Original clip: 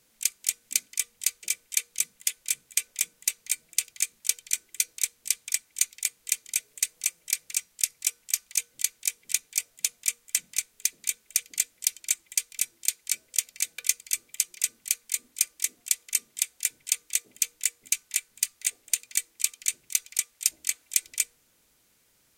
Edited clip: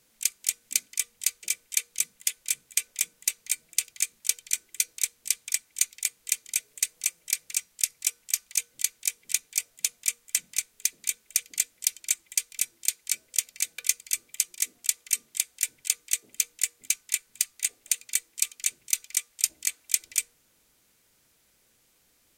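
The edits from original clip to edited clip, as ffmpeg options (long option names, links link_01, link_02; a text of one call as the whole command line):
ffmpeg -i in.wav -filter_complex "[0:a]asplit=2[link_01][link_02];[link_01]atrim=end=14.562[link_03];[link_02]atrim=start=15.578[link_04];[link_03][link_04]acrossfade=duration=0.004:curve1=hsin:curve2=hsin" out.wav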